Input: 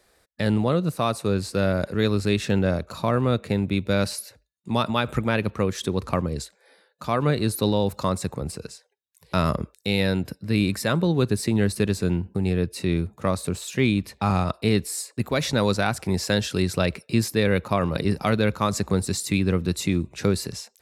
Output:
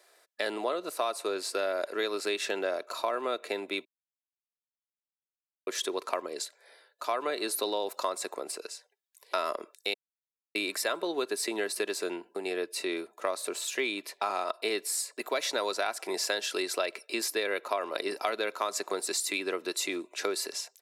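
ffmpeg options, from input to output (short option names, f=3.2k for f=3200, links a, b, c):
-filter_complex "[0:a]asplit=5[a][b][c][d][e];[a]atrim=end=3.85,asetpts=PTS-STARTPTS,afade=t=out:st=3.846:d=0.004:c=hsin[f];[b]atrim=start=3.85:end=5.67,asetpts=PTS-STARTPTS,volume=0[g];[c]atrim=start=5.67:end=9.94,asetpts=PTS-STARTPTS,afade=t=in:d=0.004:c=hsin,afade=t=out:st=4.266:d=0.004:c=hsin[h];[d]atrim=start=9.94:end=10.55,asetpts=PTS-STARTPTS,volume=0[i];[e]atrim=start=10.55,asetpts=PTS-STARTPTS,afade=t=in:d=0.004:c=hsin[j];[f][g][h][i][j]concat=n=5:v=0:a=1,highpass=f=420:w=0.5412,highpass=f=420:w=1.3066,aecho=1:1:3:0.37,acompressor=threshold=-27dB:ratio=4"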